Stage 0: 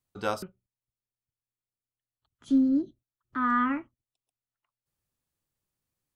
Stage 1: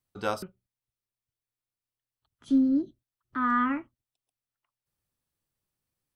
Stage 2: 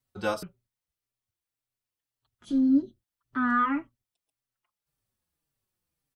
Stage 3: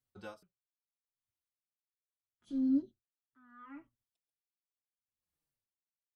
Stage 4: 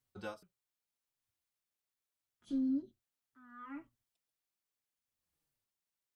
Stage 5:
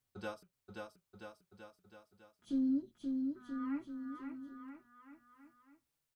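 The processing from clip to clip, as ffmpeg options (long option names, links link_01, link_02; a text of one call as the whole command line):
ffmpeg -i in.wav -af "bandreject=frequency=6900:width=11" out.wav
ffmpeg -i in.wav -filter_complex "[0:a]asplit=2[link_01][link_02];[link_02]adelay=4.7,afreqshift=-1.8[link_03];[link_01][link_03]amix=inputs=2:normalize=1,volume=4dB" out.wav
ffmpeg -i in.wav -af "aeval=exprs='val(0)*pow(10,-31*(0.5-0.5*cos(2*PI*0.74*n/s))/20)':channel_layout=same,volume=-7.5dB" out.wav
ffmpeg -i in.wav -af "acompressor=threshold=-35dB:ratio=6,volume=3.5dB" out.wav
ffmpeg -i in.wav -af "aecho=1:1:530|980.5|1363|1689|1966:0.631|0.398|0.251|0.158|0.1,volume=1dB" out.wav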